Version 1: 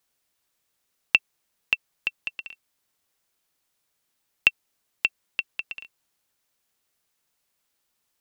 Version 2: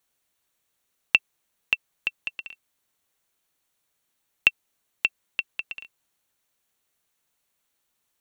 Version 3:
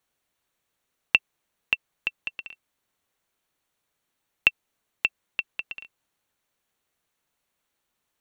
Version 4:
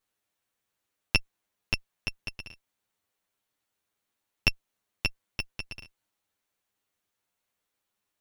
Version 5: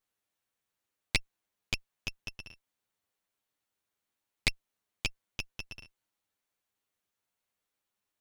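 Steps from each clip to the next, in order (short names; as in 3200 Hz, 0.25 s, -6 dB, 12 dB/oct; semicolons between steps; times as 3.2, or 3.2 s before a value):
notch 5000 Hz, Q 7.7
high shelf 4000 Hz -7.5 dB; gain +1.5 dB
minimum comb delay 9.8 ms; gain -2.5 dB
Doppler distortion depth 0.63 ms; gain -4 dB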